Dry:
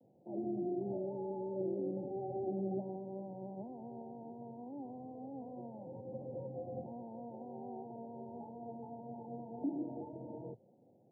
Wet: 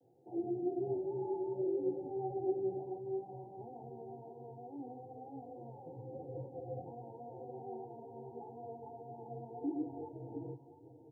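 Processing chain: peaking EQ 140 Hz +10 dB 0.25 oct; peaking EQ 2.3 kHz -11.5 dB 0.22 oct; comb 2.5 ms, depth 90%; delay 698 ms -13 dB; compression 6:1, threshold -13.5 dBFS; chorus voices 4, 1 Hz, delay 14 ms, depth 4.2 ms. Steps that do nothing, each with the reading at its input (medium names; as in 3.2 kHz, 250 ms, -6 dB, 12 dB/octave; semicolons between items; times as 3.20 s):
peaking EQ 2.3 kHz: input has nothing above 960 Hz; compression, threshold -13.5 dBFS: peak at its input -24.0 dBFS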